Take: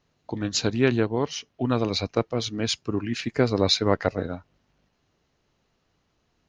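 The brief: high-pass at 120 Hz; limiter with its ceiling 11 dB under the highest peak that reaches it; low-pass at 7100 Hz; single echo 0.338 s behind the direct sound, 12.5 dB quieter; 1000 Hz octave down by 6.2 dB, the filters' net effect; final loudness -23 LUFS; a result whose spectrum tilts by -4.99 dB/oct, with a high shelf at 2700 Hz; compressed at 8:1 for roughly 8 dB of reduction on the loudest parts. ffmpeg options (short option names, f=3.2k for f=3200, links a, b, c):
-af "highpass=120,lowpass=7.1k,equalizer=f=1k:t=o:g=-7.5,highshelf=f=2.7k:g=-7,acompressor=threshold=-25dB:ratio=8,alimiter=limit=-24dB:level=0:latency=1,aecho=1:1:338:0.237,volume=12.5dB"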